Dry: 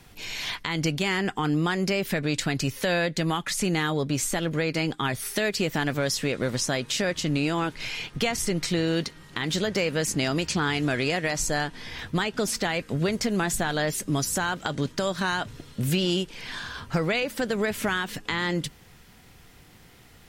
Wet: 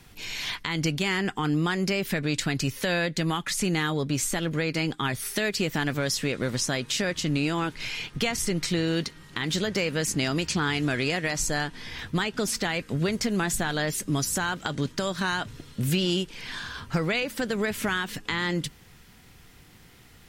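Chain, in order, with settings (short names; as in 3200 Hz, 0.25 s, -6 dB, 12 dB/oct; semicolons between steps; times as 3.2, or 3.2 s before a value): bell 630 Hz -3.5 dB 1.1 oct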